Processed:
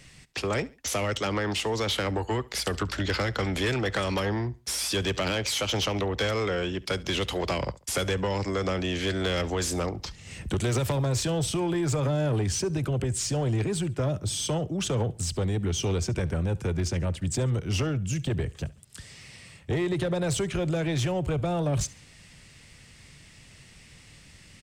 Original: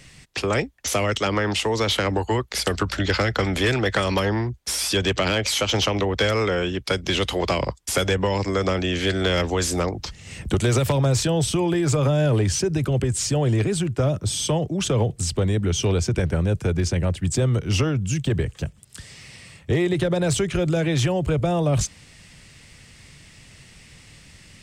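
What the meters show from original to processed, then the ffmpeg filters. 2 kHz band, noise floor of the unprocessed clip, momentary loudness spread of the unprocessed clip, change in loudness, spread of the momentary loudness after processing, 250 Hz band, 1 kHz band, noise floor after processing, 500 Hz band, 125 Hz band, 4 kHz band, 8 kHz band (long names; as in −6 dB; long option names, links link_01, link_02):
−6.0 dB, −49 dBFS, 5 LU, −5.5 dB, 4 LU, −5.5 dB, −5.5 dB, −53 dBFS, −6.0 dB, −5.5 dB, −5.5 dB, −5.0 dB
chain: -af "asoftclip=type=tanh:threshold=-16dB,aecho=1:1:70|140:0.0841|0.0286,volume=-4dB"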